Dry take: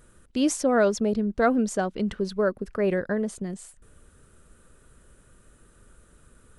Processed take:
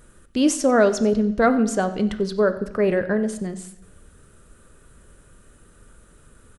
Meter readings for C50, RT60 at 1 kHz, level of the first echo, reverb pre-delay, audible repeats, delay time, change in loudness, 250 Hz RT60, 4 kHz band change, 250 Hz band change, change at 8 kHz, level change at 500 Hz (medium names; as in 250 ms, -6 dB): 12.5 dB, 0.85 s, -19.0 dB, 5 ms, 1, 92 ms, +4.5 dB, 0.80 s, +4.5 dB, +4.5 dB, +4.0 dB, +4.5 dB